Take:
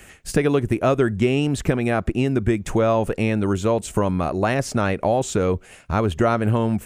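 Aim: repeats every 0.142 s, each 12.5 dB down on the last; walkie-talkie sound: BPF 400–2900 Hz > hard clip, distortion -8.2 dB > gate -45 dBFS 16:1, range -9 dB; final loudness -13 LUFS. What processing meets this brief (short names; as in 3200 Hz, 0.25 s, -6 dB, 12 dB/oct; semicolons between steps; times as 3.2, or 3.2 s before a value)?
BPF 400–2900 Hz; feedback echo 0.142 s, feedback 24%, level -12.5 dB; hard clip -21.5 dBFS; gate -45 dBFS 16:1, range -9 dB; gain +14.5 dB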